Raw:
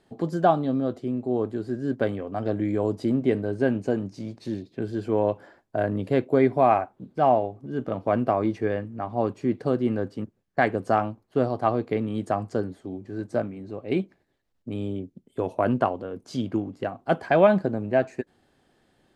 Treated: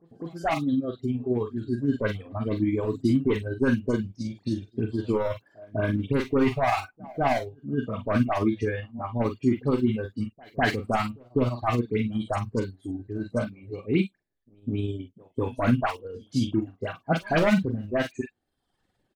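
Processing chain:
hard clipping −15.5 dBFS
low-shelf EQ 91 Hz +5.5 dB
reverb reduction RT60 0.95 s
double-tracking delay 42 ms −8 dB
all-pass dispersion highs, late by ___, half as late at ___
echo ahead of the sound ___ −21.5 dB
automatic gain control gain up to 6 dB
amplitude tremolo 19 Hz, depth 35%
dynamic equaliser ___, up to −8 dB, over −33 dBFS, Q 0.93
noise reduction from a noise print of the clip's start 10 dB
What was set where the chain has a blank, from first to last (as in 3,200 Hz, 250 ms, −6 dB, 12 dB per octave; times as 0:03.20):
73 ms, 2,300 Hz, 203 ms, 590 Hz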